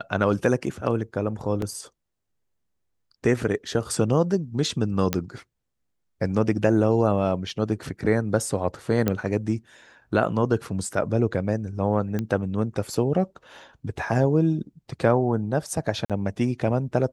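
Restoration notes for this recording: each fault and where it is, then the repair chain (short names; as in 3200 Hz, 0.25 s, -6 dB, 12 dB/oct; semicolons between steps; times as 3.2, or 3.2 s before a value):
1.62 gap 2.6 ms
5.13 pop -7 dBFS
9.08 pop -9 dBFS
12.19 pop -15 dBFS
16.05–16.1 gap 47 ms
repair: de-click; interpolate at 1.62, 2.6 ms; interpolate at 16.05, 47 ms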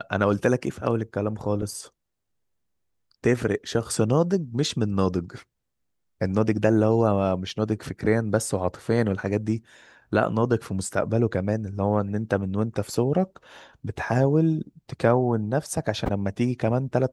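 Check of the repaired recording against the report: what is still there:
none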